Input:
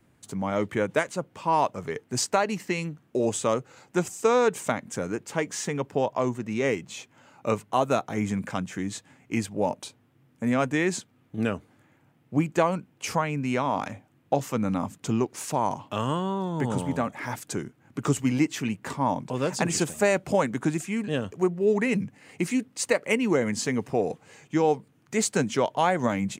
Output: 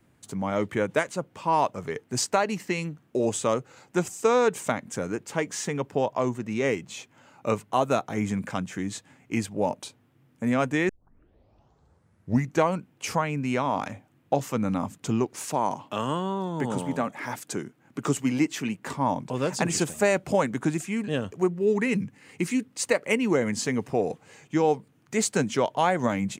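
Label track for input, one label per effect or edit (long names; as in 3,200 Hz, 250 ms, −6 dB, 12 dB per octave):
10.890000	10.890000	tape start 1.79 s
15.500000	18.890000	high-pass filter 150 Hz
21.470000	22.700000	parametric band 660 Hz −9 dB 0.38 octaves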